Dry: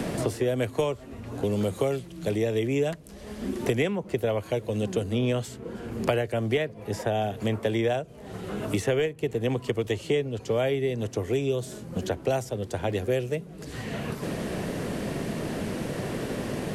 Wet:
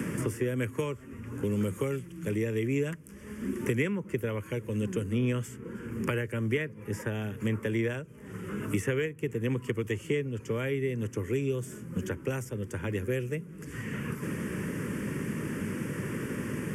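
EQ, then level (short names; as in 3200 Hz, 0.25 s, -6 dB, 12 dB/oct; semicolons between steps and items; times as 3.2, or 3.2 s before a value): HPF 82 Hz; fixed phaser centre 1700 Hz, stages 4; 0.0 dB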